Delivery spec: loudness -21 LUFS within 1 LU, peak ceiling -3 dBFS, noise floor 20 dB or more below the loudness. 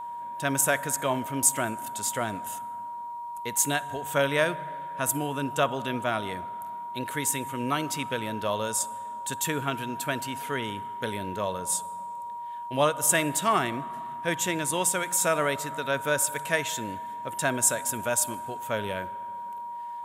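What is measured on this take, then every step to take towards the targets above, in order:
dropouts 1; longest dropout 2.5 ms; steady tone 950 Hz; tone level -34 dBFS; loudness -28.0 LUFS; peak -7.5 dBFS; loudness target -21.0 LUFS
-> interpolate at 18.34, 2.5 ms; notch 950 Hz, Q 30; gain +7 dB; limiter -3 dBFS

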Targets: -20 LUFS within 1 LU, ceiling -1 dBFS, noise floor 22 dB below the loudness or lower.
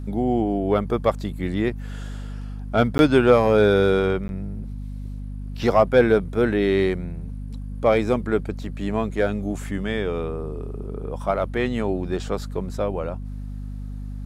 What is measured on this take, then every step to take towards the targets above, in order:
dropouts 2; longest dropout 11 ms; hum 50 Hz; harmonics up to 250 Hz; hum level -29 dBFS; loudness -22.0 LUFS; peak -5.0 dBFS; loudness target -20.0 LUFS
-> interpolate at 2.98/4.28, 11 ms; de-hum 50 Hz, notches 5; gain +2 dB

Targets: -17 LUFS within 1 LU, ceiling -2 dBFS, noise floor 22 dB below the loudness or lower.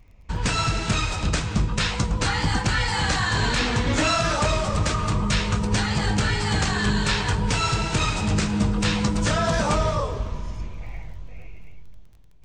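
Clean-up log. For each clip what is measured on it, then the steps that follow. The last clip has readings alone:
ticks 22/s; loudness -23.0 LUFS; peak -12.0 dBFS; loudness target -17.0 LUFS
-> de-click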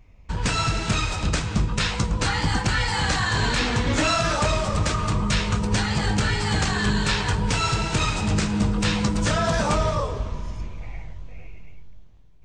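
ticks 0/s; loudness -23.0 LUFS; peak -12.0 dBFS; loudness target -17.0 LUFS
-> gain +6 dB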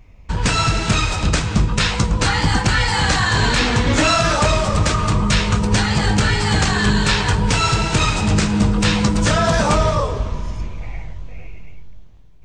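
loudness -17.0 LUFS; peak -6.0 dBFS; noise floor -40 dBFS

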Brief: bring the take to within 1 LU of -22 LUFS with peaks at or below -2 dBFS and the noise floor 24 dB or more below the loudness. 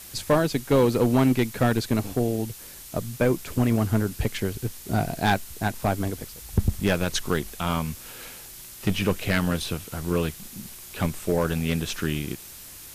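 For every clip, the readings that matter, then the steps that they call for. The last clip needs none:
clipped 0.6%; flat tops at -13.0 dBFS; noise floor -43 dBFS; noise floor target -50 dBFS; loudness -25.5 LUFS; peak -13.0 dBFS; loudness target -22.0 LUFS
-> clip repair -13 dBFS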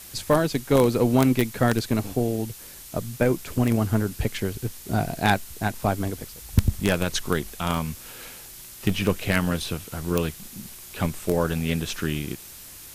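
clipped 0.0%; noise floor -43 dBFS; noise floor target -49 dBFS
-> denoiser 6 dB, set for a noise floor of -43 dBFS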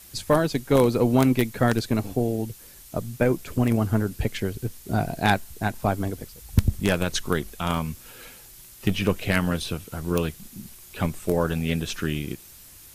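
noise floor -47 dBFS; noise floor target -49 dBFS
-> denoiser 6 dB, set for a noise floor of -47 dBFS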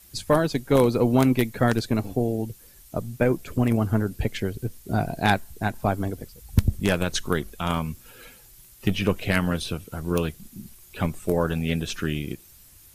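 noise floor -51 dBFS; loudness -25.0 LUFS; peak -4.0 dBFS; loudness target -22.0 LUFS
-> gain +3 dB; limiter -2 dBFS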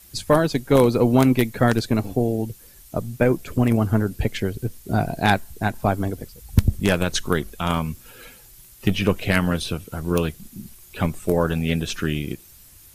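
loudness -22.5 LUFS; peak -2.0 dBFS; noise floor -48 dBFS

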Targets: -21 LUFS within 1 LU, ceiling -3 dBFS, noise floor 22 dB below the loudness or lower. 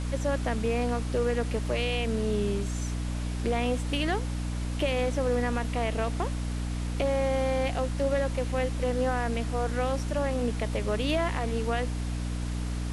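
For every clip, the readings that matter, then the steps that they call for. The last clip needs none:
hum 60 Hz; harmonics up to 300 Hz; hum level -29 dBFS; noise floor -32 dBFS; noise floor target -52 dBFS; loudness -29.5 LUFS; peak -14.5 dBFS; loudness target -21.0 LUFS
-> de-hum 60 Hz, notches 5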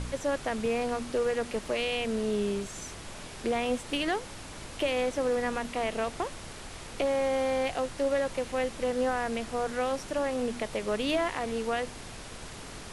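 hum none; noise floor -43 dBFS; noise floor target -53 dBFS
-> noise print and reduce 10 dB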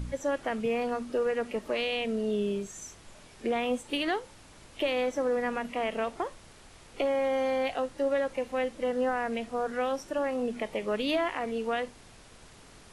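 noise floor -53 dBFS; loudness -31.0 LUFS; peak -17.0 dBFS; loudness target -21.0 LUFS
-> gain +10 dB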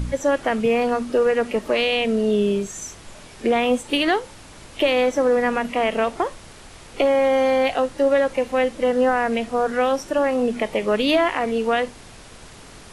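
loudness -21.0 LUFS; peak -7.0 dBFS; noise floor -43 dBFS

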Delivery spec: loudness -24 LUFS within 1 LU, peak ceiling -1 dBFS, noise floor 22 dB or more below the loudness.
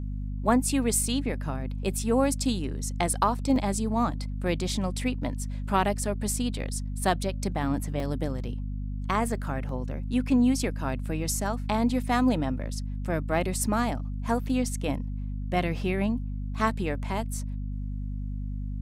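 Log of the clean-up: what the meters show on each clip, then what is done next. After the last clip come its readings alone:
dropouts 3; longest dropout 1.8 ms; hum 50 Hz; harmonics up to 250 Hz; hum level -30 dBFS; loudness -28.5 LUFS; peak -9.0 dBFS; loudness target -24.0 LUFS
-> interpolate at 3.56/8/9.69, 1.8 ms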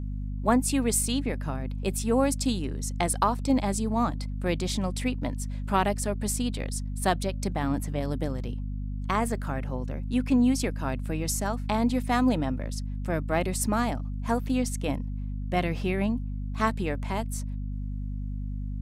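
dropouts 0; hum 50 Hz; harmonics up to 250 Hz; hum level -30 dBFS
-> de-hum 50 Hz, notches 5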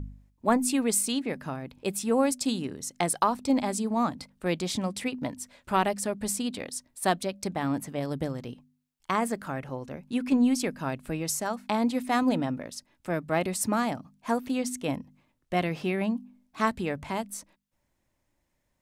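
hum none; loudness -29.0 LUFS; peak -9.0 dBFS; loudness target -24.0 LUFS
-> gain +5 dB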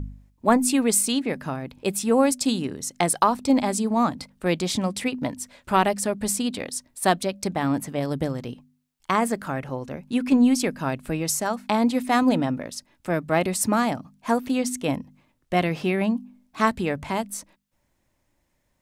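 loudness -24.0 LUFS; peak -4.0 dBFS; noise floor -71 dBFS

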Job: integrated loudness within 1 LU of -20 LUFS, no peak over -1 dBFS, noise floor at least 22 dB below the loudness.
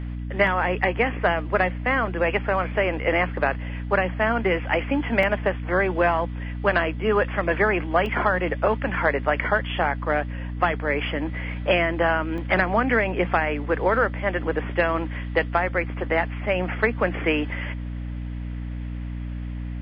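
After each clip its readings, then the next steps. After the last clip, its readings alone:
dropouts 4; longest dropout 1.7 ms; hum 60 Hz; harmonics up to 300 Hz; hum level -28 dBFS; loudness -23.5 LUFS; peak -7.5 dBFS; loudness target -20.0 LUFS
-> interpolate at 0.47/5.23/8.06/12.38, 1.7 ms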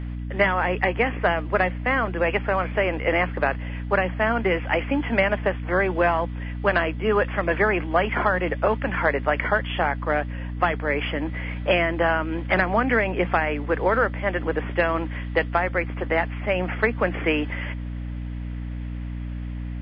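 dropouts 0; hum 60 Hz; harmonics up to 300 Hz; hum level -28 dBFS
-> de-hum 60 Hz, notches 5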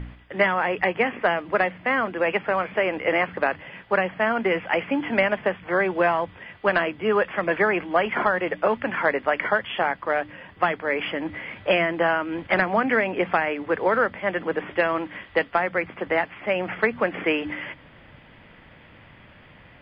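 hum none; loudness -24.0 LUFS; peak -8.0 dBFS; loudness target -20.0 LUFS
-> gain +4 dB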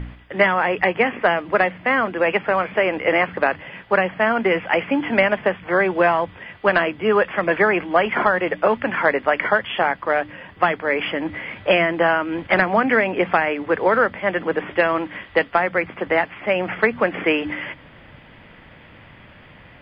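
loudness -20.0 LUFS; peak -4.0 dBFS; noise floor -46 dBFS

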